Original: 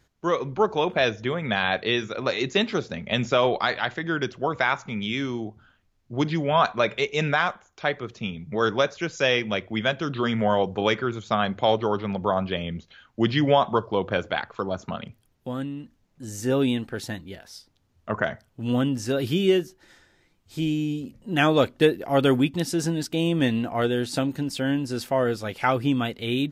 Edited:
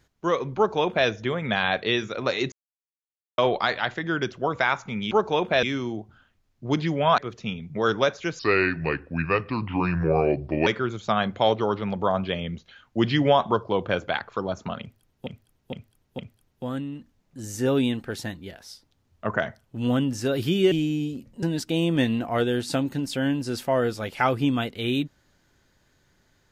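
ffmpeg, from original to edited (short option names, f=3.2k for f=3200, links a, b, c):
-filter_complex "[0:a]asplit=13[a][b][c][d][e][f][g][h][i][j][k][l][m];[a]atrim=end=2.52,asetpts=PTS-STARTPTS,afade=t=out:st=2.516:d=0.004:c=hsin[n];[b]atrim=start=2.52:end=3.38,asetpts=PTS-STARTPTS,volume=0[o];[c]atrim=start=3.38:end=5.112,asetpts=PTS-STARTPTS,afade=t=in:d=0.004:c=hsin[p];[d]atrim=start=0.558:end=1.082[q];[e]atrim=start=5.108:end=6.662[r];[f]atrim=start=7.948:end=9.164[s];[g]atrim=start=9.16:end=10.89,asetpts=PTS-STARTPTS,asetrate=33516,aresample=44100[t];[h]atrim=start=10.886:end=15.492[u];[i]atrim=start=15.028:end=15.492[v];[j]atrim=start=15.028:end=15.492[w];[k]atrim=start=15.028:end=19.562[x];[l]atrim=start=20.598:end=21.312[y];[m]atrim=start=22.858[z];[n][o][p]concat=n=3:v=0:a=1[aa];[aa][q]acrossfade=d=0.004:c1=hsin:c2=hsin[ab];[ab][r]acrossfade=d=0.004:c1=hsin:c2=hsin[ac];[ac][s]acrossfade=d=0.004:c1=hsin:c2=hsin[ad];[ad][t]acrossfade=d=0.004:c1=hsin:c2=hsin[ae];[ae][u]acrossfade=d=0.004:c1=hsin:c2=hsin[af];[af][v]acrossfade=d=0.004:c1=hsin:c2=hsin[ag];[ag][w]acrossfade=d=0.004:c1=hsin:c2=hsin[ah];[ah][x]acrossfade=d=0.004:c1=hsin:c2=hsin[ai];[ai][y]acrossfade=d=0.004:c1=hsin:c2=hsin[aj];[aj][z]acrossfade=d=0.004:c1=hsin:c2=hsin"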